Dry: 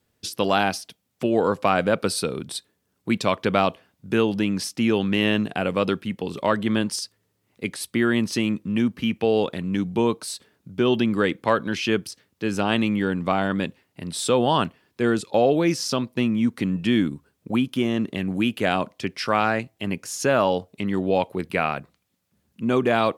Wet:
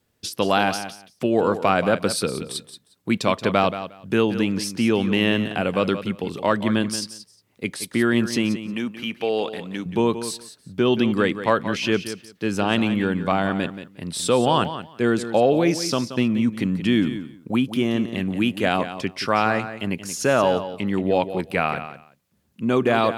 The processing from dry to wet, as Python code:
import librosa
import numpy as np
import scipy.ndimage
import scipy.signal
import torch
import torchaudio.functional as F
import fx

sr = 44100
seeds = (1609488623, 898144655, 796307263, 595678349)

p1 = fx.highpass(x, sr, hz=510.0, slope=6, at=(8.56, 9.86))
p2 = p1 + fx.echo_feedback(p1, sr, ms=178, feedback_pct=16, wet_db=-11.5, dry=0)
y = p2 * librosa.db_to_amplitude(1.0)